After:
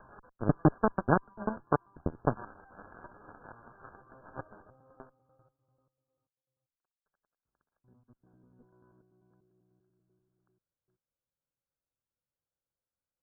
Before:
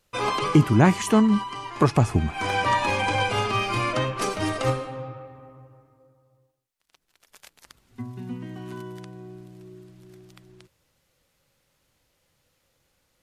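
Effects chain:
slices reordered back to front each 98 ms, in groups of 4
harmonic generator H 3 −9 dB, 8 −37 dB, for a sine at −6 dBFS
linear-phase brick-wall low-pass 1,700 Hz
level −3 dB

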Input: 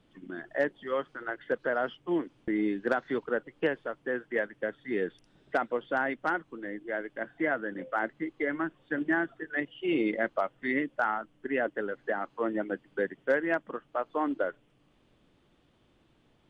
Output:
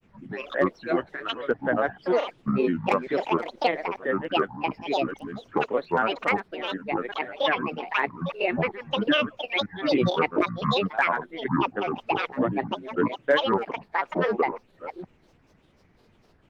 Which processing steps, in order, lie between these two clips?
delay that plays each chunk backwards 396 ms, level −12 dB
granular cloud, spray 13 ms, pitch spread up and down by 12 semitones
level +6.5 dB

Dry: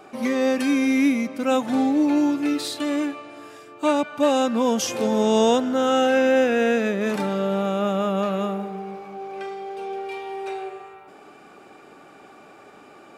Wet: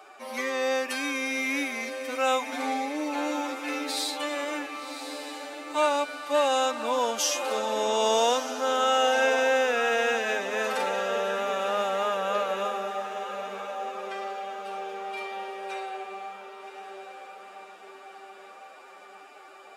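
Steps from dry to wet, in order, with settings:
high-pass filter 660 Hz 12 dB per octave
feedback delay with all-pass diffusion 727 ms, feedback 57%, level −9 dB
phase-vocoder stretch with locked phases 1.5×

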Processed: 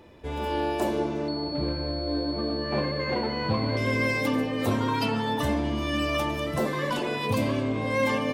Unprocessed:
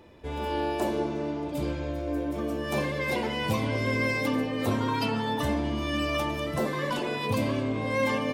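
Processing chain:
0:01.28–0:03.77: switching amplifier with a slow clock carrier 4,400 Hz
level +1.5 dB

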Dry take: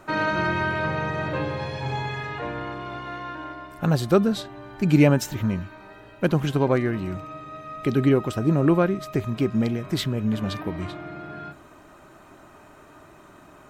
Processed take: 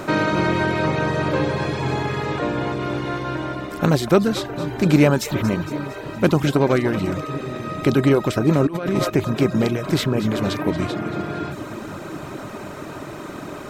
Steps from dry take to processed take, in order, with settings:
compressor on every frequency bin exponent 0.6
on a send: echo with a time of its own for lows and highs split 390 Hz, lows 734 ms, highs 230 ms, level −12 dB
0:08.67–0:09.10: on the sum: compressor whose output falls as the input rises −22 dBFS, ratio −1
reverb reduction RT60 0.64 s
level +1.5 dB

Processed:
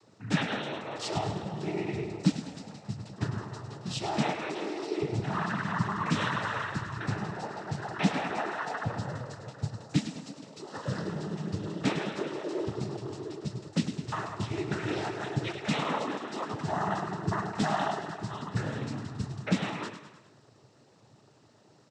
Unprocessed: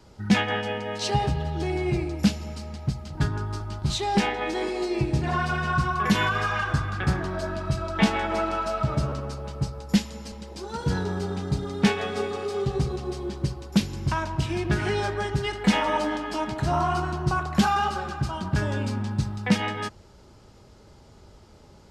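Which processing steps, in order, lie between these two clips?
repeating echo 103 ms, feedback 54%, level −9 dB
cochlear-implant simulation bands 12
level −6.5 dB

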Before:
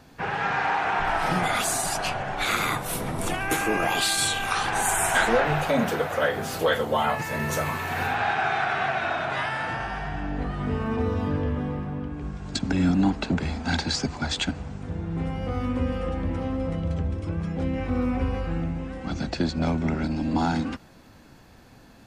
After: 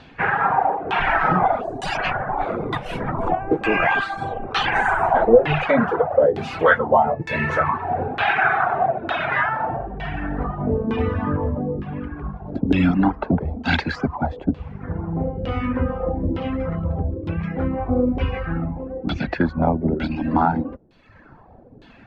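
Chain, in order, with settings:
reverb reduction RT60 0.98 s
auto-filter low-pass saw down 1.1 Hz 370–3,500 Hz
level +5.5 dB

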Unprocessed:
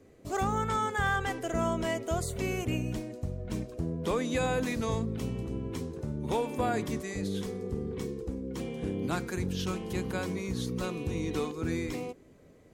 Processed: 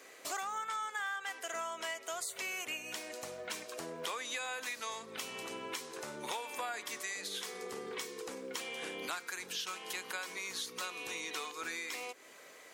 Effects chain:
high-pass filter 1,200 Hz 12 dB per octave
downward compressor 5 to 1, threshold −55 dBFS, peak gain reduction 23 dB
level +16 dB

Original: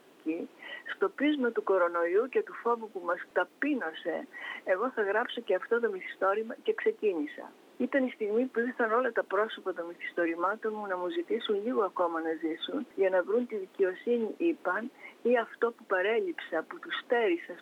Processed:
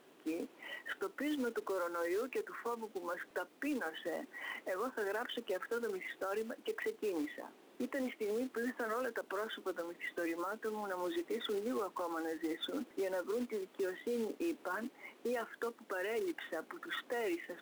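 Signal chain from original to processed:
brickwall limiter −26 dBFS, peak gain reduction 10 dB
floating-point word with a short mantissa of 2 bits
level −4 dB

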